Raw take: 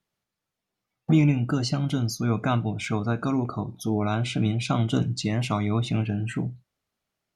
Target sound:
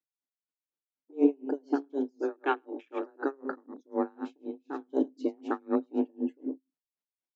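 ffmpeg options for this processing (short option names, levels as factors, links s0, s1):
-filter_complex "[0:a]afwtdn=0.0282,asettb=1/sr,asplit=3[s0][s1][s2];[s0]atrim=end=2.174[s3];[s1]atrim=start=2.17:end=3.21,asetpts=PTS-STARTPTS,afade=t=in:d=0.004:c=qsin,afade=t=out:st=1.036:d=0.004:c=qsin,highpass=f=160:w=0.5412,highpass=f=160:w=1.3066[s4];[s2]atrim=start=3.206[s5];[s3][s4]acrossfade=d=0.004:c1=hsin:c2=qsin[s6];[s6][s5]acrossfade=d=0.004:c1=qsin:c2=hsin,asettb=1/sr,asplit=3[s7][s8][s9];[s7]atrim=end=4.134[s10];[s8]atrim=start=4.13:end=4.88,asetpts=PTS-STARTPTS,afade=t=in:d=0.004:c=qsin,afade=t=out:st=0.746:d=0.004:c=qsin,acompressor=threshold=0.0355:ratio=12[s11];[s9]atrim=start=4.876[s12];[s10][s11]acrossfade=d=0.004:c1=hsin:c2=qsin[s13];[s13][s12]acrossfade=d=0.004:c1=qsin:c2=hsin,afreqshift=140,asplit=2[s14][s15];[s15]aecho=0:1:106:0.266[s16];[s14][s16]amix=inputs=2:normalize=0,aresample=16000,aresample=44100,aeval=exprs='val(0)*pow(10,-35*(0.5-0.5*cos(2*PI*4*n/s))/20)':c=same"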